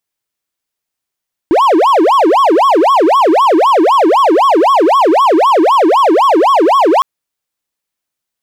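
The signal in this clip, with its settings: siren wail 309–1120 Hz 3.9 per s triangle -3.5 dBFS 5.51 s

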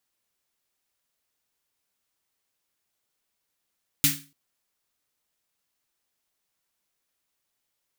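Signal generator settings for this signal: snare drum length 0.29 s, tones 150 Hz, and 280 Hz, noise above 1.6 kHz, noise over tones 9 dB, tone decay 0.37 s, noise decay 0.31 s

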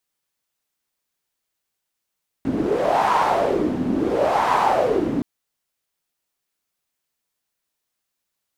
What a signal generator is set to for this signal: wind-like swept noise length 2.77 s, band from 260 Hz, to 960 Hz, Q 4.1, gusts 2, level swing 4 dB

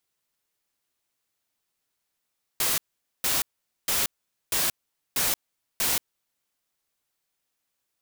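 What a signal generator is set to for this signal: noise bursts white, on 0.18 s, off 0.46 s, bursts 6, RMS -24.5 dBFS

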